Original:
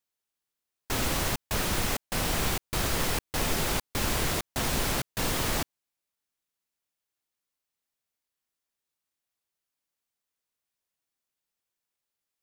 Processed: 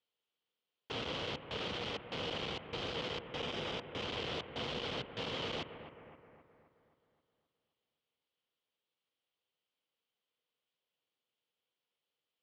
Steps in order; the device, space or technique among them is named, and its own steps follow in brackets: analogue delay pedal into a guitar amplifier (analogue delay 0.263 s, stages 4096, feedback 53%, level -20 dB; tube stage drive 37 dB, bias 0.3; speaker cabinet 99–4300 Hz, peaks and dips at 480 Hz +9 dB, 1700 Hz -4 dB, 3100 Hz +9 dB); 3.27–4.02 notch 4300 Hz, Q 9.3

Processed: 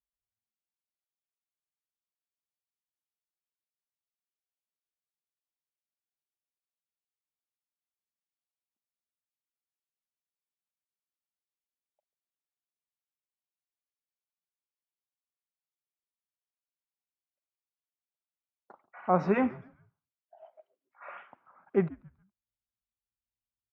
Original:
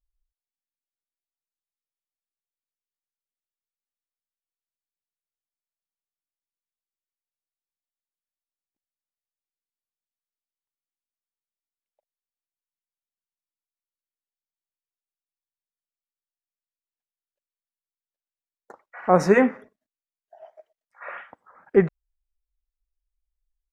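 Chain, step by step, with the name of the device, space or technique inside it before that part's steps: frequency-shifting delay pedal into a guitar cabinet (frequency-shifting echo 0.139 s, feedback 36%, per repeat -120 Hz, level -21 dB; speaker cabinet 110–3500 Hz, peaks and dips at 310 Hz -4 dB, 470 Hz -9 dB, 1800 Hz -10 dB); gain -5.5 dB

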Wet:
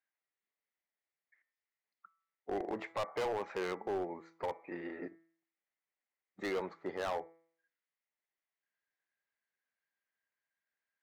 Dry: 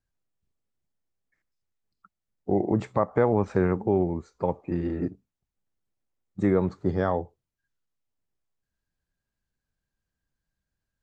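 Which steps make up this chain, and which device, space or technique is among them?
megaphone (BPF 560–3400 Hz; bell 2000 Hz +11.5 dB 0.46 oct; hard clip -27 dBFS, distortion -7 dB); de-hum 165.1 Hz, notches 14; dynamic EQ 1900 Hz, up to -4 dB, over -50 dBFS, Q 1.7; gain -3.5 dB

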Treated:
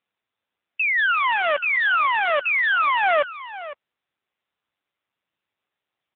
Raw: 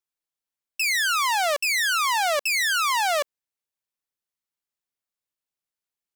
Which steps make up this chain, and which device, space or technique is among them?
1.05–3.03 dynamic EQ 760 Hz, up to -5 dB, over -36 dBFS, Q 2.2; satellite phone (BPF 330–3200 Hz; echo 0.507 s -14.5 dB; gain +6 dB; AMR-NB 6.7 kbps 8000 Hz)

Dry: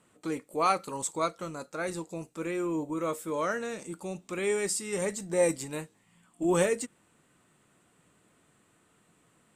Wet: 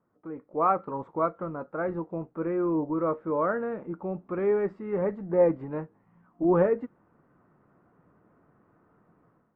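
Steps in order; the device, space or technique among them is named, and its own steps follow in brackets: action camera in a waterproof case (LPF 1400 Hz 24 dB/oct; AGC gain up to 12 dB; gain -7.5 dB; AAC 96 kbps 22050 Hz)

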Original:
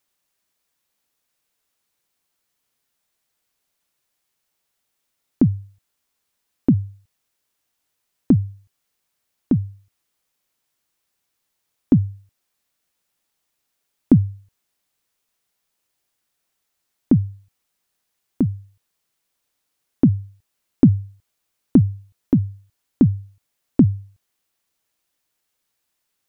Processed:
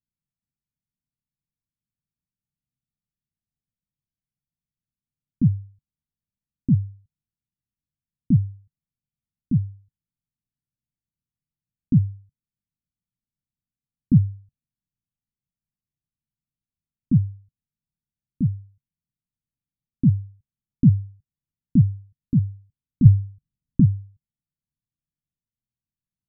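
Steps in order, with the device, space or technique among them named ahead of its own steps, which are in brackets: 23.05–23.8 low shelf 250 Hz +10 dB; the neighbour's flat through the wall (LPF 210 Hz 24 dB/oct; bell 140 Hz +4.5 dB 0.45 oct); gain -1 dB

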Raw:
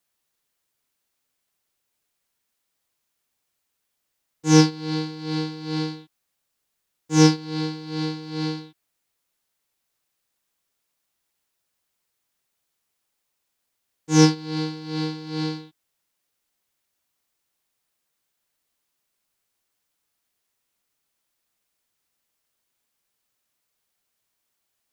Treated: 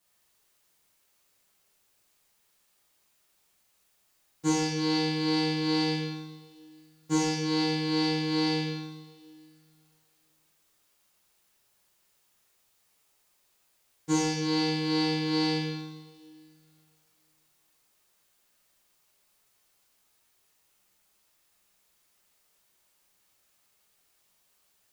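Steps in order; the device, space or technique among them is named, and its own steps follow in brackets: serial compression, leveller first (compressor, threshold -18 dBFS, peak gain reduction 9.5 dB; compressor, threshold -28 dBFS, peak gain reduction 11 dB); two-slope reverb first 0.93 s, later 2.6 s, DRR -7 dB

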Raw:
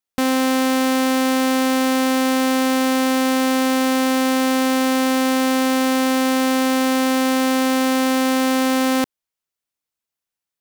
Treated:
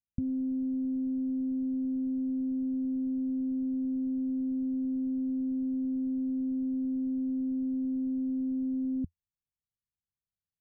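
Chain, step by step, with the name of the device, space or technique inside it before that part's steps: the neighbour's flat through the wall (LPF 180 Hz 24 dB/oct; bell 85 Hz +5.5 dB 0.51 oct); gain +2 dB

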